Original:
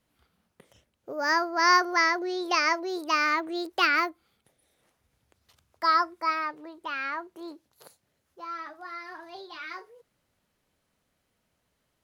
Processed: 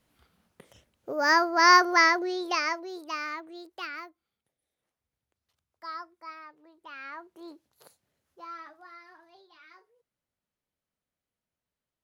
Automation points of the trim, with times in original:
2.06 s +3 dB
2.88 s -7 dB
4.05 s -16 dB
6.50 s -16 dB
7.51 s -4 dB
8.44 s -4 dB
9.47 s -15.5 dB

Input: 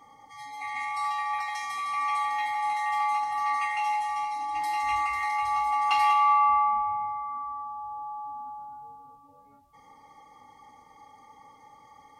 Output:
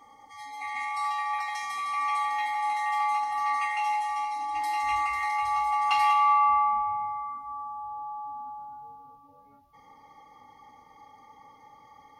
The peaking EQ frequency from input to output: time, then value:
peaking EQ -12.5 dB 0.4 oct
5.20 s 140 Hz
5.91 s 400 Hz
7.21 s 400 Hz
7.48 s 1.5 kHz
7.93 s 8 kHz

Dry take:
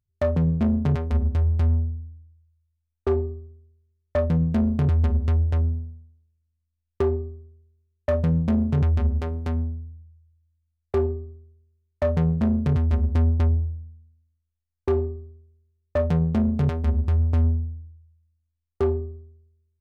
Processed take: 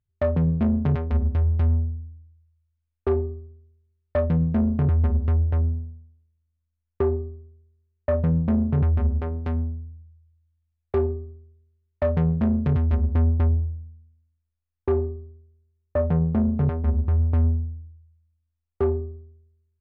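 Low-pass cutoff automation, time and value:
3 kHz
from 4.48 s 2 kHz
from 9.44 s 3 kHz
from 12.96 s 2.2 kHz
from 15.09 s 1.6 kHz
from 17.15 s 2.2 kHz

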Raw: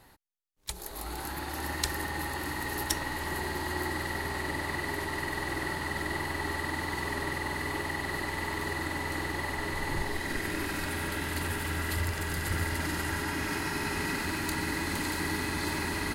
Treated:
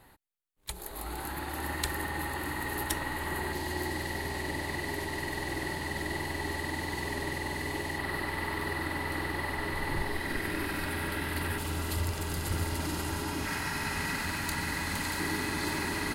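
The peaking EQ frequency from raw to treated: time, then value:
peaking EQ -9 dB 0.58 oct
5.6 kHz
from 3.53 s 1.3 kHz
from 7.98 s 6.7 kHz
from 11.58 s 1.8 kHz
from 13.45 s 350 Hz
from 15.16 s 61 Hz

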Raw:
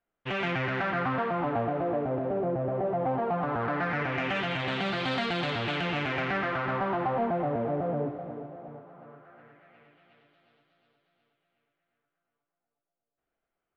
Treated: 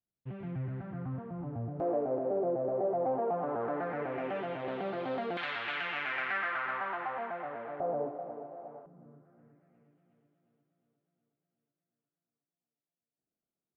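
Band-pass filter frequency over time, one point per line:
band-pass filter, Q 1.3
110 Hz
from 1.80 s 490 Hz
from 5.37 s 1.7 kHz
from 7.80 s 690 Hz
from 8.86 s 190 Hz

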